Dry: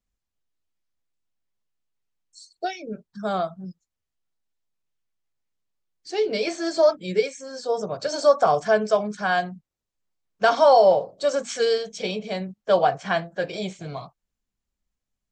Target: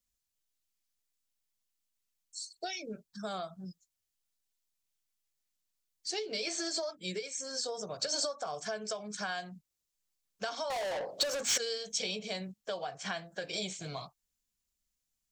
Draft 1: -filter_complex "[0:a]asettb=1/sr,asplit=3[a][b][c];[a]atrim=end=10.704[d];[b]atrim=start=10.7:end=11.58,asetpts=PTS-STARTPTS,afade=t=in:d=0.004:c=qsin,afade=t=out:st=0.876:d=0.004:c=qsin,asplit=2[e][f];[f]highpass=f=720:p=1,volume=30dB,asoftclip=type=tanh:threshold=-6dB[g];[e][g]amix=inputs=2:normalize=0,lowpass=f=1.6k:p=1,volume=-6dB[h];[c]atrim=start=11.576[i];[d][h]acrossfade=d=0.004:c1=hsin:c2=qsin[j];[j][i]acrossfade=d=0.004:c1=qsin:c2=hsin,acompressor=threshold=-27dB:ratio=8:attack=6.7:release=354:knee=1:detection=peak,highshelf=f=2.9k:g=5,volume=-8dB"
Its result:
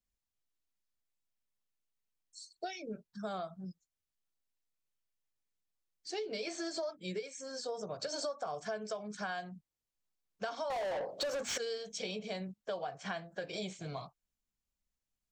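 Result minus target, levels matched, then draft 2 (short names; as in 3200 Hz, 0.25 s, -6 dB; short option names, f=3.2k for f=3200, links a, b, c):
8000 Hz band -6.0 dB
-filter_complex "[0:a]asettb=1/sr,asplit=3[a][b][c];[a]atrim=end=10.704[d];[b]atrim=start=10.7:end=11.58,asetpts=PTS-STARTPTS,afade=t=in:d=0.004:c=qsin,afade=t=out:st=0.876:d=0.004:c=qsin,asplit=2[e][f];[f]highpass=f=720:p=1,volume=30dB,asoftclip=type=tanh:threshold=-6dB[g];[e][g]amix=inputs=2:normalize=0,lowpass=f=1.6k:p=1,volume=-6dB[h];[c]atrim=start=11.576[i];[d][h]acrossfade=d=0.004:c1=hsin:c2=qsin[j];[j][i]acrossfade=d=0.004:c1=qsin:c2=hsin,acompressor=threshold=-27dB:ratio=8:attack=6.7:release=354:knee=1:detection=peak,highshelf=f=2.9k:g=16.5,volume=-8dB"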